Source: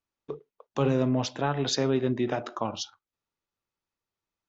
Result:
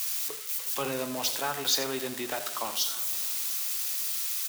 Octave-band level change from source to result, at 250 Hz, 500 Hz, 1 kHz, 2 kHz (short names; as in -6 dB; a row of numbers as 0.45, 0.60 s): -11.0, -6.5, -1.5, +3.0 dB